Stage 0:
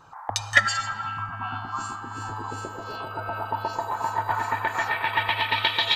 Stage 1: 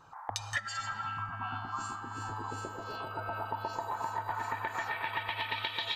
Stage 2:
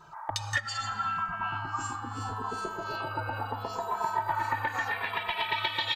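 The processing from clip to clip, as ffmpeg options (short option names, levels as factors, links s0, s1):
-af "acompressor=threshold=0.0562:ratio=16,volume=0.531"
-filter_complex "[0:a]asplit=2[s0][s1];[s1]adelay=2.6,afreqshift=-0.74[s2];[s0][s2]amix=inputs=2:normalize=1,volume=2.37"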